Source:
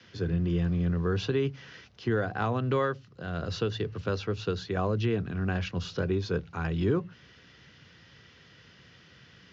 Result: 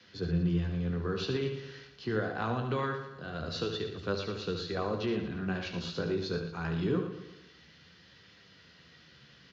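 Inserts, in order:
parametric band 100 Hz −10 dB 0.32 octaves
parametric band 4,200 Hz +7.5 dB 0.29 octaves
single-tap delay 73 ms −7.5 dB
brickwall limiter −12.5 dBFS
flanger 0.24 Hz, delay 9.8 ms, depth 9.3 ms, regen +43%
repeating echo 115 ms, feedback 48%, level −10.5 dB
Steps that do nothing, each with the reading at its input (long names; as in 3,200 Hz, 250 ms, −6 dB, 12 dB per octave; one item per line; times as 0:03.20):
brickwall limiter −12.5 dBFS: peak of its input −14.5 dBFS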